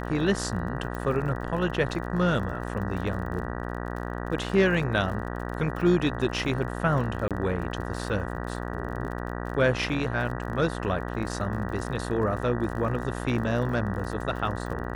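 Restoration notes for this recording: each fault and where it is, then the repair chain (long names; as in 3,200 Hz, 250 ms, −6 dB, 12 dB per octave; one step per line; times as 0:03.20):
mains buzz 60 Hz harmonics 32 −33 dBFS
surface crackle 41 per second −36 dBFS
0:00.95: click −22 dBFS
0:07.28–0:07.31: drop-out 27 ms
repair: click removal
hum removal 60 Hz, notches 32
repair the gap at 0:07.28, 27 ms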